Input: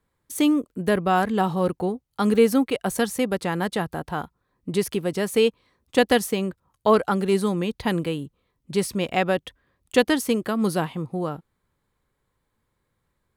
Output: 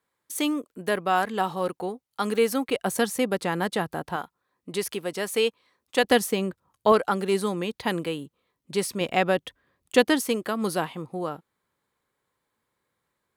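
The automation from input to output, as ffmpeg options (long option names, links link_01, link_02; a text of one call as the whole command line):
ffmpeg -i in.wav -af "asetnsamples=nb_out_samples=441:pad=0,asendcmd='2.69 highpass f 190;4.16 highpass f 610;6.04 highpass f 150;6.92 highpass f 340;9.01 highpass f 150;10.22 highpass f 370',highpass=frequency=600:poles=1" out.wav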